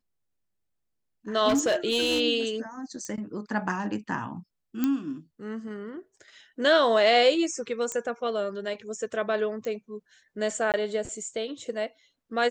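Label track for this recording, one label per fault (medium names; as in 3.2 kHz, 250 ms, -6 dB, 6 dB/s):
1.480000	2.210000	clipped -19.5 dBFS
3.050000	3.050000	pop -24 dBFS
4.840000	4.840000	pop -13 dBFS
7.920000	7.920000	pop -17 dBFS
9.650000	9.650000	pop -22 dBFS
10.720000	10.740000	dropout 18 ms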